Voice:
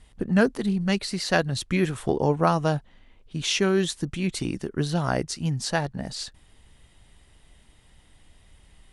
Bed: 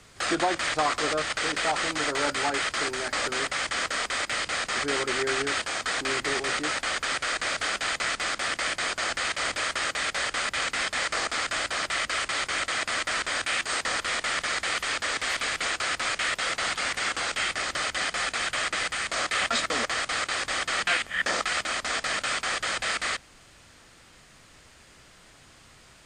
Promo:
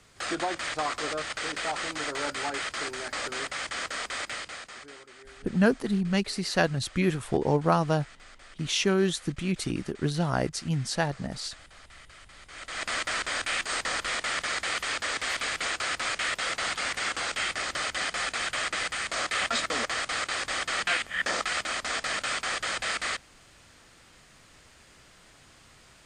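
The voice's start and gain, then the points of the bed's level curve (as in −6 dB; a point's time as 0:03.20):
5.25 s, −2.0 dB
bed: 0:04.27 −5 dB
0:05.08 −23.5 dB
0:12.39 −23.5 dB
0:12.87 −2 dB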